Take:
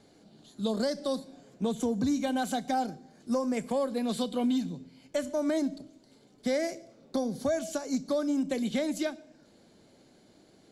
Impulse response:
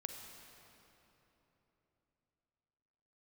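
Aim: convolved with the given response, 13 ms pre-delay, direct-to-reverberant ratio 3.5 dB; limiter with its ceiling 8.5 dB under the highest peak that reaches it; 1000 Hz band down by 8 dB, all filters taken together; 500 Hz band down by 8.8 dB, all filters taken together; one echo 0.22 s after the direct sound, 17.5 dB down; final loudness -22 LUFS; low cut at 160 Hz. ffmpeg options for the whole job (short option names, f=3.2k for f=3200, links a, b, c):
-filter_complex "[0:a]highpass=160,equalizer=f=500:t=o:g=-8,equalizer=f=1k:t=o:g=-7.5,alimiter=level_in=6dB:limit=-24dB:level=0:latency=1,volume=-6dB,aecho=1:1:220:0.133,asplit=2[a][b];[1:a]atrim=start_sample=2205,adelay=13[c];[b][c]afir=irnorm=-1:irlink=0,volume=-1.5dB[d];[a][d]amix=inputs=2:normalize=0,volume=15.5dB"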